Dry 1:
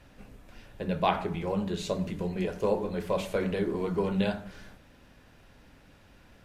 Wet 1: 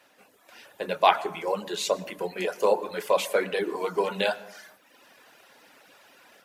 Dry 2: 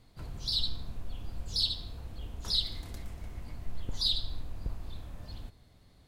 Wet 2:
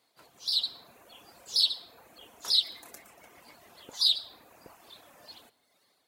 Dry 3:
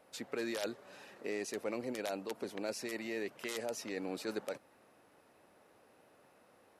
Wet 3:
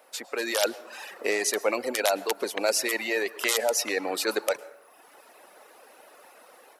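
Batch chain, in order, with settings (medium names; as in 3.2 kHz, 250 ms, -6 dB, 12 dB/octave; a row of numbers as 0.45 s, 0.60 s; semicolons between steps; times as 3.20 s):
reverb removal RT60 1 s; high-pass 500 Hz 12 dB/octave; treble shelf 9.7 kHz +7.5 dB; level rider gain up to 8 dB; plate-style reverb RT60 0.82 s, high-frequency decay 0.45×, pre-delay 95 ms, DRR 18 dB; normalise loudness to -27 LUFS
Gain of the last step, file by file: +1.0 dB, -3.5 dB, +9.0 dB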